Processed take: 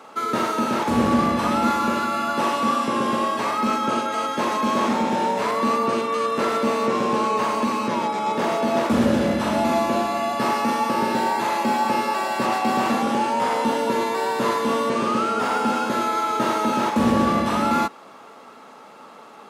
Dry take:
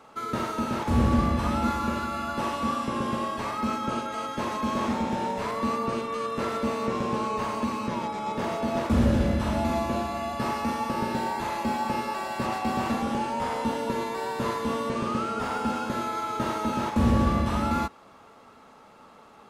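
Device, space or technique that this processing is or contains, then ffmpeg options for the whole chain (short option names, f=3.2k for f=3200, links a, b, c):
parallel distortion: -filter_complex "[0:a]asplit=2[a][b];[b]asoftclip=type=hard:threshold=-27dB,volume=-11.5dB[c];[a][c]amix=inputs=2:normalize=0,highpass=220,volume=6dB"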